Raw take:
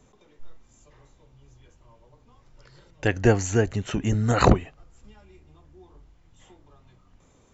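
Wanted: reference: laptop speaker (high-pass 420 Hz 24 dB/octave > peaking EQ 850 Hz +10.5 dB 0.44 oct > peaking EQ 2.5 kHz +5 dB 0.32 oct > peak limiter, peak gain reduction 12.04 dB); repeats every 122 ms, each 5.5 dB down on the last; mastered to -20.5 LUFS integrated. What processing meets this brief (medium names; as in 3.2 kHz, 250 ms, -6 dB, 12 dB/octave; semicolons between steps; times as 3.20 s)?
high-pass 420 Hz 24 dB/octave; peaking EQ 850 Hz +10.5 dB 0.44 oct; peaking EQ 2.5 kHz +5 dB 0.32 oct; feedback delay 122 ms, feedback 53%, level -5.5 dB; trim +6.5 dB; peak limiter -7 dBFS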